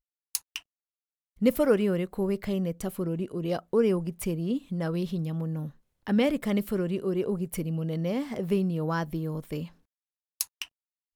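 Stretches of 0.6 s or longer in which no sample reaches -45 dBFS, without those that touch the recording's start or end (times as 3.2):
0.59–1.41
9.69–10.4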